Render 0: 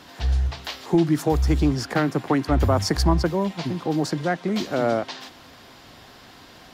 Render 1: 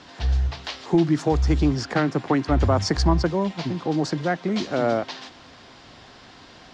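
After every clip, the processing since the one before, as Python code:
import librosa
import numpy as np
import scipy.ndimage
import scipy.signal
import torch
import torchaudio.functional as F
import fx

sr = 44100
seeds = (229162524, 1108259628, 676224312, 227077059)

y = scipy.signal.sosfilt(scipy.signal.butter(4, 7000.0, 'lowpass', fs=sr, output='sos'), x)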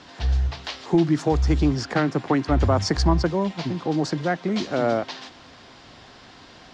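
y = x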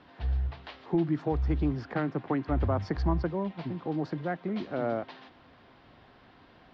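y = fx.air_absorb(x, sr, metres=340.0)
y = F.gain(torch.from_numpy(y), -7.5).numpy()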